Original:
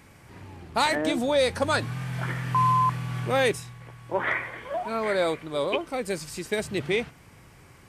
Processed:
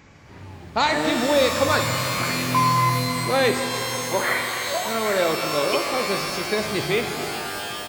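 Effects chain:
downsampling to 16,000 Hz
reverb with rising layers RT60 3.3 s, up +12 semitones, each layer −2 dB, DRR 5 dB
level +2.5 dB

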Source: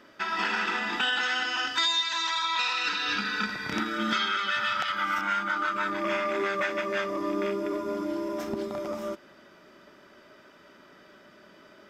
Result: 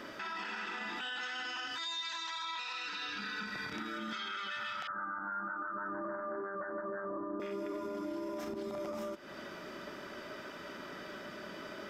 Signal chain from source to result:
downward compressor 6 to 1, threshold −42 dBFS, peak gain reduction 18 dB
0:04.87–0:07.40: Butterworth low-pass 1,700 Hz 96 dB per octave
brickwall limiter −39.5 dBFS, peak gain reduction 10 dB
level +8 dB

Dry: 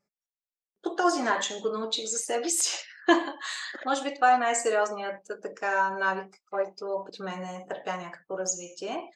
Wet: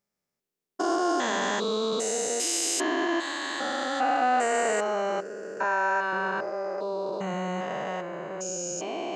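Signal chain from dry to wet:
spectrum averaged block by block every 400 ms
0:05.64–0:06.13: high-pass filter 450 Hz 6 dB per octave
in parallel at +2 dB: brickwall limiter −26 dBFS, peak gain reduction 7 dB

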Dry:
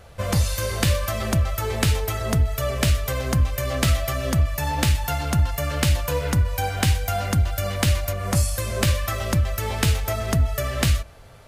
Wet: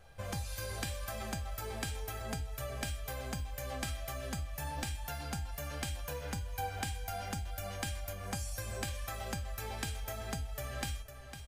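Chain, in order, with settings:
downward compressor, threshold −22 dBFS, peak gain reduction 8 dB
tuned comb filter 800 Hz, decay 0.26 s, mix 90%
single-tap delay 504 ms −10.5 dB
level +4.5 dB

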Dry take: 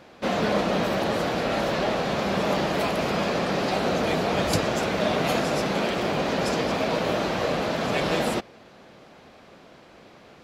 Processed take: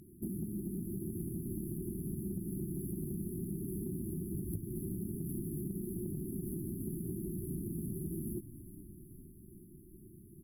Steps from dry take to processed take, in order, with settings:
running median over 15 samples
linear-phase brick-wall band-stop 390–10,000 Hz
parametric band 270 Hz −9.5 dB 0.63 octaves
downward compressor 10 to 1, threshold −39 dBFS, peak gain reduction 17.5 dB
parametric band 9,700 Hz +11 dB 2.2 octaves
on a send: echo with shifted repeats 417 ms, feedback 63%, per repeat −47 Hz, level −14 dB
on the sum: level +3 dB

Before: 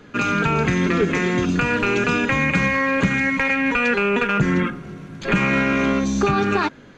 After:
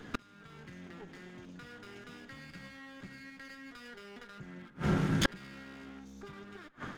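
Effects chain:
lower of the sound and its delayed copy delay 0.58 ms
on a send: feedback echo with a band-pass in the loop 79 ms, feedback 72%, band-pass 1,100 Hz, level −18 dB
on the sum: gate with flip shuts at −19 dBFS, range −36 dB
automatic gain control gain up to 10 dB
level −3 dB

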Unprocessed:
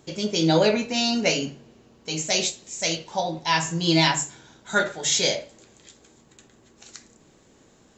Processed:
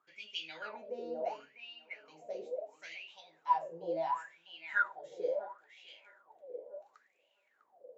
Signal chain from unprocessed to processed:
feedback echo with a band-pass in the loop 651 ms, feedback 58%, band-pass 570 Hz, level −4.5 dB
LFO wah 0.72 Hz 460–2,900 Hz, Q 15

